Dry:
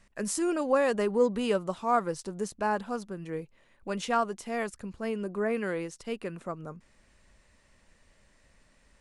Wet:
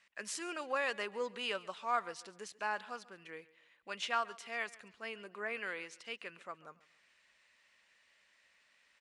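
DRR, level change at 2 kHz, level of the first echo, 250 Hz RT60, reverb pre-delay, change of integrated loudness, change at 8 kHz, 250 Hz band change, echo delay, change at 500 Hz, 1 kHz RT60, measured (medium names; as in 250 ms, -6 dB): no reverb, -1.5 dB, -20.5 dB, no reverb, no reverb, -9.0 dB, -8.5 dB, -19.5 dB, 139 ms, -13.5 dB, no reverb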